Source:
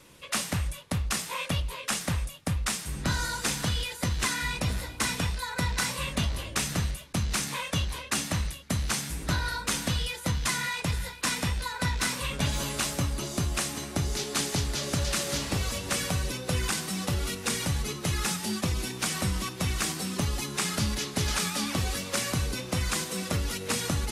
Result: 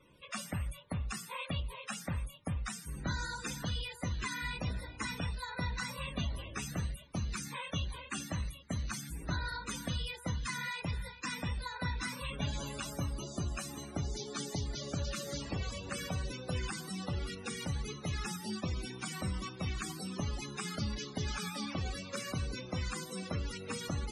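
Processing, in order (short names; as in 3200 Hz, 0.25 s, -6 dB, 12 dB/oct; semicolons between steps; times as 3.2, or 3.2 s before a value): loudest bins only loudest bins 64; de-hum 117.4 Hz, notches 13; gain -7 dB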